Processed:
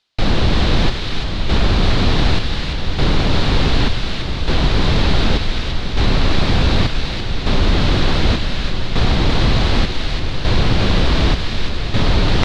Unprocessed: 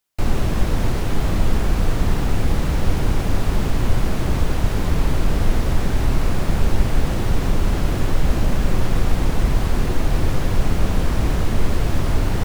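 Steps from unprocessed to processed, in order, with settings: reverse; upward compressor, threshold -20 dBFS; reverse; square tremolo 0.67 Hz, depth 65%, duty 60%; wavefolder -14 dBFS; resonant low-pass 4 kHz, resonance Q 3.1; on a send: feedback echo behind a high-pass 341 ms, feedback 54%, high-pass 1.6 kHz, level -4 dB; on the sum: trim +6.5 dB

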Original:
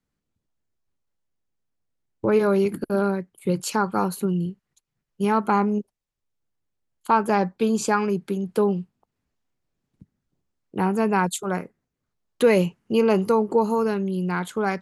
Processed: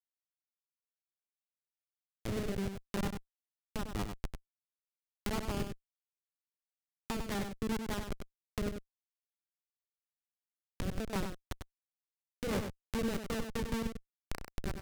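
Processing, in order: steep high-pass 190 Hz 48 dB/octave; resonant high shelf 5.1 kHz -6 dB, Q 1.5; hum notches 60/120/180/240/300/360/420/480/540/600 Hz; power-law waveshaper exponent 2; Schmitt trigger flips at -27.5 dBFS; rotary cabinet horn 0.9 Hz, later 5 Hz, at 6.57 s; delay 97 ms -7 dB; tape noise reduction on one side only encoder only; trim +2 dB

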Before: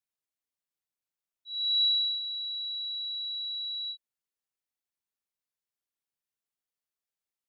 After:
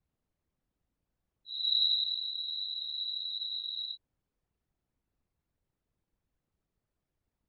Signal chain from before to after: whisper effect; tilt EQ -5.5 dB/octave; trim +8.5 dB

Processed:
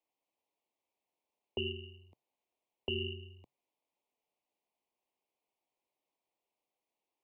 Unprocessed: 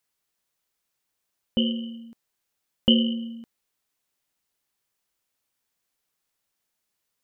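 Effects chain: peak limiter -16 dBFS, peak gain reduction 9.5 dB; frequency shift -140 Hz; Chebyshev band-stop 940–2400 Hz, order 2; three-band isolator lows -19 dB, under 240 Hz, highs -19 dB, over 2.2 kHz; trim +1 dB

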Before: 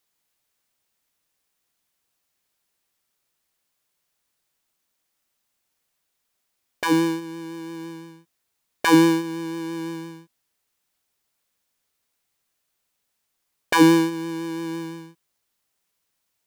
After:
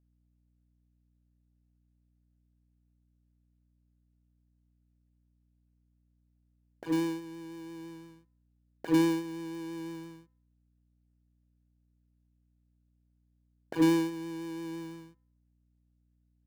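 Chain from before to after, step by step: median filter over 41 samples; de-hum 100.8 Hz, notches 22; hum 60 Hz, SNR 33 dB; trim -8.5 dB

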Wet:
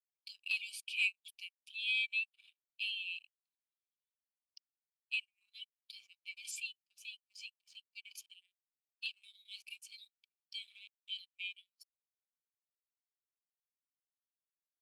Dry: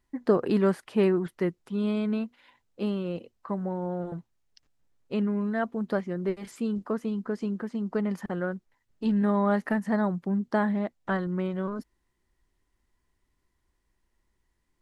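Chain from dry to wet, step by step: Chebyshev high-pass 2.3 kHz, order 10; waveshaping leveller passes 3; spectral contrast expander 1.5:1; trim +3.5 dB

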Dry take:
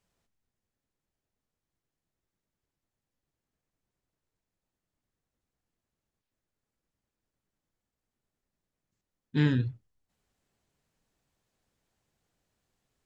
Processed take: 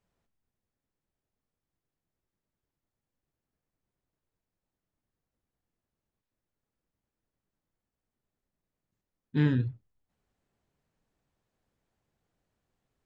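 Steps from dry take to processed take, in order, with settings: treble shelf 2.9 kHz -9.5 dB

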